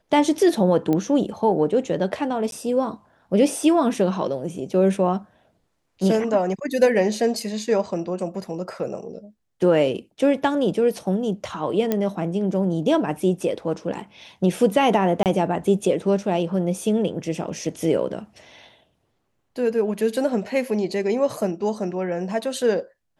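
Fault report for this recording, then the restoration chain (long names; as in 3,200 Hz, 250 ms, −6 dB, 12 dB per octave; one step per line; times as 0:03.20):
0:00.93: click −12 dBFS
0:02.51–0:02.52: drop-out 12 ms
0:11.92: click −9 dBFS
0:15.23–0:15.26: drop-out 28 ms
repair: click removal
repair the gap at 0:02.51, 12 ms
repair the gap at 0:15.23, 28 ms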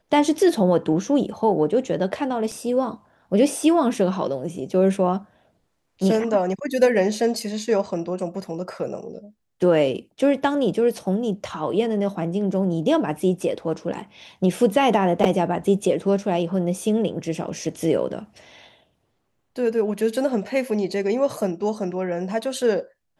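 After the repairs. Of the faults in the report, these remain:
none of them is left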